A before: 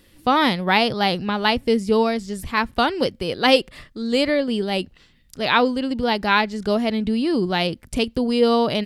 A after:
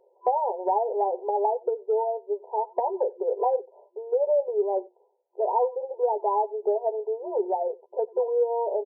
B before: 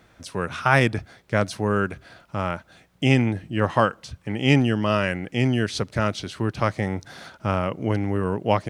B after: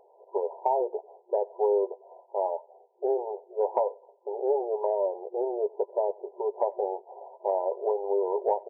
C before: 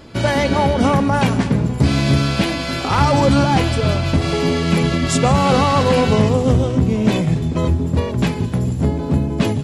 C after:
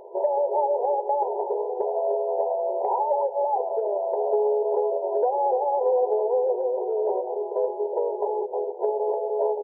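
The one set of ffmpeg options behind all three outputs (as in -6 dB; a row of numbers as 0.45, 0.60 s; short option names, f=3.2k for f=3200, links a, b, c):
-filter_complex "[0:a]afftfilt=real='re*between(b*sr/4096,360,1000)':imag='im*between(b*sr/4096,360,1000)':win_size=4096:overlap=0.75,acompressor=threshold=-26dB:ratio=5,asplit=2[a][b];[b]adelay=12,volume=-7.5dB[c];[a][c]amix=inputs=2:normalize=0,asplit=2[d][e];[e]aecho=0:1:92:0.0631[f];[d][f]amix=inputs=2:normalize=0,volume=3.5dB"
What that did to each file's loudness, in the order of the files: -6.5, -6.0, -8.0 LU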